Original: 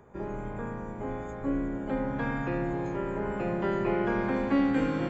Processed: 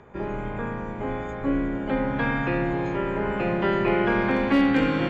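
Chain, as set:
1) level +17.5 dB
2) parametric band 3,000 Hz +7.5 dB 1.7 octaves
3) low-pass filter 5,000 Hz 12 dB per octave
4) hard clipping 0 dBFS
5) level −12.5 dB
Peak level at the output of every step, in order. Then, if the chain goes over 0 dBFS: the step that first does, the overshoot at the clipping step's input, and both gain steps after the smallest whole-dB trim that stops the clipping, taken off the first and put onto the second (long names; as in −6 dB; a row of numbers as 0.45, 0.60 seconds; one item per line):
+3.0, +4.0, +4.0, 0.0, −12.5 dBFS
step 1, 4.0 dB
step 1 +13.5 dB, step 5 −8.5 dB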